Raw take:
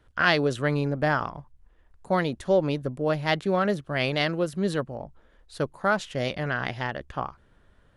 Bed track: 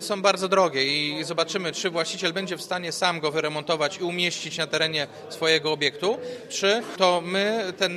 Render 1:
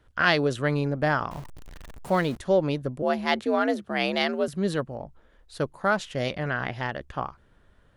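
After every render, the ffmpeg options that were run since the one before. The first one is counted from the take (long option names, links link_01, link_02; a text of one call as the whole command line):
ffmpeg -i in.wav -filter_complex "[0:a]asettb=1/sr,asplit=3[link_01][link_02][link_03];[link_01]atrim=end=1.314[link_04];[link_02]atrim=start=1.31:end=2.37,asetpts=PTS-STARTPTS,afade=type=in:duration=0.004:curve=qsin,afade=type=out:start_time=1.056:duration=0.004:curve=qsin,aeval=exprs='val(0)+0.5*0.0141*sgn(val(0))':channel_layout=same[link_05];[link_03]atrim=start=2.366[link_06];[link_04][link_05]acrossfade=duration=0.004:curve1=hsin:curve2=qsin[link_07];[link_07][link_06]acrossfade=duration=0.004:curve1=qsin:curve2=hsin,asettb=1/sr,asplit=3[link_08][link_09][link_10];[link_08]atrim=end=3.024[link_11];[link_09]atrim=start=3.02:end=4.48,asetpts=PTS-STARTPTS,afade=type=in:duration=0.004:curve=qsin,afade=type=out:start_time=1.456:duration=0.004:curve=qsin,afreqshift=66[link_12];[link_10]atrim=start=4.476[link_13];[link_11][link_12]acrossfade=duration=0.004:curve1=hsin:curve2=qsin[link_14];[link_14][link_13]acrossfade=duration=0.004:curve1=qsin:curve2=hsin,asettb=1/sr,asplit=3[link_15][link_16][link_17];[link_15]atrim=end=6.314[link_18];[link_16]atrim=start=6.31:end=6.83,asetpts=PTS-STARTPTS,afade=type=in:duration=0.004:curve=qsin,afade=type=out:start_time=0.516:duration=0.004:curve=qsin,acrossover=split=3100[link_19][link_20];[link_20]acompressor=threshold=-49dB:ratio=4:attack=1:release=60[link_21];[link_19][link_21]amix=inputs=2:normalize=0[link_22];[link_17]atrim=start=6.826[link_23];[link_18][link_22]acrossfade=duration=0.004:curve1=hsin:curve2=qsin[link_24];[link_24][link_23]acrossfade=duration=0.004:curve1=qsin:curve2=hsin" out.wav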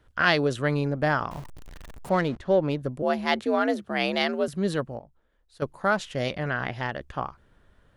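ffmpeg -i in.wav -filter_complex "[0:a]asettb=1/sr,asplit=3[link_01][link_02][link_03];[link_01]atrim=end=2.094[link_04];[link_02]atrim=start=2.09:end=2.79,asetpts=PTS-STARTPTS,afade=type=in:duration=0.004:curve=qsin,afade=type=out:start_time=0.696:duration=0.004:curve=qsin,adynamicsmooth=sensitivity=2:basefreq=3500[link_05];[link_03]atrim=start=2.786[link_06];[link_04][link_05]acrossfade=duration=0.004:curve1=hsin:curve2=qsin[link_07];[link_07][link_06]acrossfade=duration=0.004:curve1=qsin:curve2=hsin,asplit=3[link_08][link_09][link_10];[link_08]atrim=end=4.992[link_11];[link_09]atrim=start=4.988:end=5.622,asetpts=PTS-STARTPTS,volume=-11.5dB[link_12];[link_10]atrim=start=5.618[link_13];[link_11][link_12]acrossfade=duration=0.004:curve1=hsin:curve2=hsin[link_14];[link_14][link_13]acrossfade=duration=0.004:curve1=hsin:curve2=hsin" out.wav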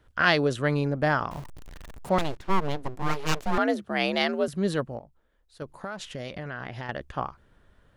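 ffmpeg -i in.wav -filter_complex "[0:a]asettb=1/sr,asplit=3[link_01][link_02][link_03];[link_01]atrim=end=2.184[link_04];[link_02]atrim=start=2.18:end=3.58,asetpts=PTS-STARTPTS,afade=type=in:duration=0.004:curve=qsin,afade=type=out:start_time=1.396:duration=0.004:curve=qsin,aeval=exprs='abs(val(0))':channel_layout=same[link_05];[link_03]atrim=start=3.576[link_06];[link_04][link_05]acrossfade=duration=0.004:curve1=hsin:curve2=qsin[link_07];[link_07][link_06]acrossfade=duration=0.004:curve1=qsin:curve2=hsin,asettb=1/sr,asplit=3[link_08][link_09][link_10];[link_08]atrim=end=4.974[link_11];[link_09]atrim=start=4.97:end=6.89,asetpts=PTS-STARTPTS,afade=type=in:duration=0.004:curve=qsin,afade=type=out:start_time=1.916:duration=0.004:curve=qsin,acompressor=threshold=-31dB:ratio=8:attack=3.2:release=140:knee=1:detection=peak[link_12];[link_10]atrim=start=6.886[link_13];[link_11][link_12]acrossfade=duration=0.004:curve1=hsin:curve2=qsin[link_14];[link_14][link_13]acrossfade=duration=0.004:curve1=qsin:curve2=hsin" out.wav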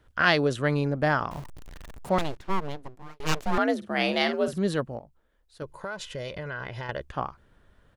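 ffmpeg -i in.wav -filter_complex "[0:a]asplit=3[link_01][link_02][link_03];[link_01]afade=type=out:start_time=3.81:duration=0.02[link_04];[link_02]asplit=2[link_05][link_06];[link_06]adelay=50,volume=-9.5dB[link_07];[link_05][link_07]amix=inputs=2:normalize=0,afade=type=in:start_time=3.81:duration=0.02,afade=type=out:start_time=4.58:duration=0.02[link_08];[link_03]afade=type=in:start_time=4.58:duration=0.02[link_09];[link_04][link_08][link_09]amix=inputs=3:normalize=0,asettb=1/sr,asplit=3[link_10][link_11][link_12];[link_10]atrim=end=5.634[link_13];[link_11]atrim=start=5.63:end=7.03,asetpts=PTS-STARTPTS,afade=type=in:duration=0.004:curve=qsin,afade=type=out:start_time=1.396:duration=0.004:curve=qsin,aecho=1:1:2:0.51,atrim=end_sample=61740[link_14];[link_12]atrim=start=7.026[link_15];[link_13][link_14]acrossfade=duration=0.004:curve1=hsin:curve2=qsin[link_16];[link_16][link_15]acrossfade=duration=0.004:curve1=qsin:curve2=hsin,asplit=2[link_17][link_18];[link_17]atrim=end=3.2,asetpts=PTS-STARTPTS,afade=type=out:start_time=1.82:duration=1.38:curve=qsin[link_19];[link_18]atrim=start=3.2,asetpts=PTS-STARTPTS,afade=type=in:duration=0.004:curve=hsin[link_20];[link_19][link_20]concat=n=2:v=0:a=1" out.wav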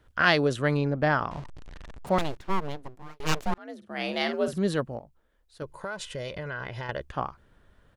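ffmpeg -i in.wav -filter_complex "[0:a]asettb=1/sr,asplit=3[link_01][link_02][link_03];[link_01]atrim=end=0.774[link_04];[link_02]atrim=start=0.77:end=2.07,asetpts=PTS-STARTPTS,afade=type=in:duration=0.004:curve=qsin,afade=type=out:start_time=1.296:duration=0.004:curve=qsin,lowpass=5400[link_05];[link_03]atrim=start=2.066[link_06];[link_04][link_05]acrossfade=duration=0.004:curve1=hsin:curve2=qsin[link_07];[link_07][link_06]acrossfade=duration=0.004:curve1=qsin:curve2=hsin,asettb=1/sr,asplit=3[link_08][link_09][link_10];[link_08]atrim=end=5.774[link_11];[link_09]atrim=start=5.77:end=6.17,asetpts=PTS-STARTPTS,afade=type=in:duration=0.004:curve=qsin,afade=type=out:start_time=0.396:duration=0.004:curve=qsin,equalizer=frequency=8700:width_type=o:width=0.23:gain=7.5[link_12];[link_10]atrim=start=6.166[link_13];[link_11][link_12]acrossfade=duration=0.004:curve1=hsin:curve2=qsin[link_14];[link_14][link_13]acrossfade=duration=0.004:curve1=qsin:curve2=hsin,asplit=2[link_15][link_16];[link_15]atrim=end=3.54,asetpts=PTS-STARTPTS,afade=type=out:start_time=3.536:duration=0.004:curve=hsin[link_17];[link_16]atrim=start=3.54,asetpts=PTS-STARTPTS,afade=type=in:duration=0.99[link_18];[link_17][link_18]concat=n=2:v=0:a=1" out.wav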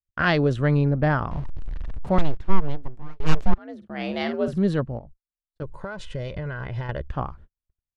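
ffmpeg -i in.wav -af "agate=range=-48dB:threshold=-50dB:ratio=16:detection=peak,aemphasis=mode=reproduction:type=bsi" out.wav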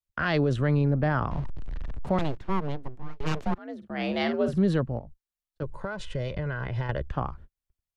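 ffmpeg -i in.wav -filter_complex "[0:a]acrossover=split=110|510[link_01][link_02][link_03];[link_01]acompressor=threshold=-28dB:ratio=6[link_04];[link_04][link_02][link_03]amix=inputs=3:normalize=0,alimiter=limit=-15.5dB:level=0:latency=1:release=31" out.wav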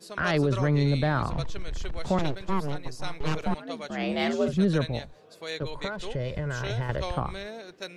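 ffmpeg -i in.wav -i bed.wav -filter_complex "[1:a]volume=-15dB[link_01];[0:a][link_01]amix=inputs=2:normalize=0" out.wav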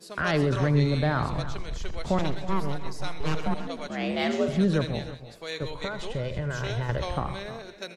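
ffmpeg -i in.wav -af "aecho=1:1:82|129|130|306|329:0.168|0.133|0.15|0.126|0.158" out.wav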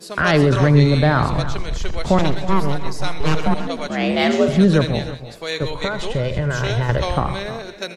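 ffmpeg -i in.wav -af "volume=9.5dB" out.wav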